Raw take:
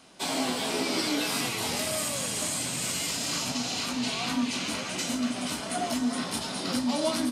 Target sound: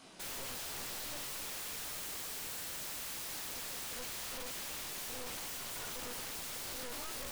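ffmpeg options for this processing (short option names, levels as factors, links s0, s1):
-af "flanger=delay=18.5:depth=5.5:speed=2.2,aeval=exprs='(tanh(56.2*val(0)+0.7)-tanh(0.7))/56.2':c=same,aeval=exprs='(mod(168*val(0)+1,2)-1)/168':c=same,volume=1.88"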